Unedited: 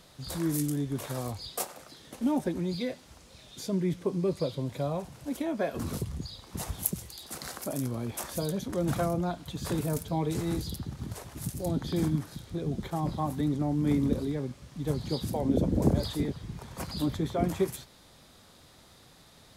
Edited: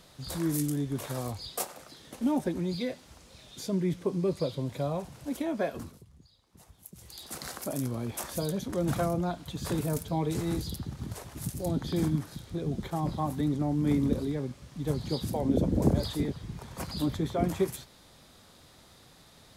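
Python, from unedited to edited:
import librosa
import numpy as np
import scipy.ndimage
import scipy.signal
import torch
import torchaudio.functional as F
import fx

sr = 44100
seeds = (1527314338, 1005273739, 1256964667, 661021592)

y = fx.edit(x, sr, fx.fade_down_up(start_s=5.66, length_s=1.53, db=-20.0, fade_s=0.27), tone=tone)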